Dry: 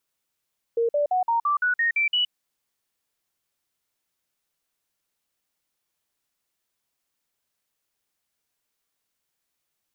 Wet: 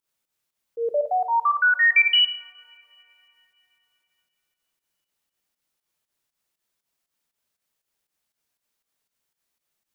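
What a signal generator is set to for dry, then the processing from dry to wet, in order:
stepped sweep 464 Hz up, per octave 3, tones 9, 0.12 s, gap 0.05 s −19 dBFS
dynamic equaliser 2,300 Hz, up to +8 dB, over −38 dBFS, Q 0.81
fake sidechain pumping 119 BPM, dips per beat 2, −15 dB, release 111 ms
coupled-rooms reverb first 0.78 s, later 3.3 s, from −21 dB, DRR 10.5 dB

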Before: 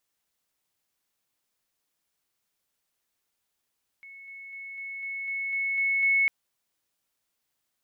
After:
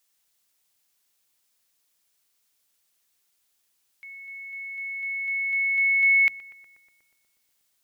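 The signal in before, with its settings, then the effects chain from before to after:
level staircase 2,200 Hz −43.5 dBFS, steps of 3 dB, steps 9, 0.25 s 0.00 s
high-shelf EQ 2,200 Hz +9.5 dB
mains-hum notches 60/120/180/240/300 Hz
feedback echo with a low-pass in the loop 121 ms, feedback 82%, low-pass 2,000 Hz, level −16.5 dB

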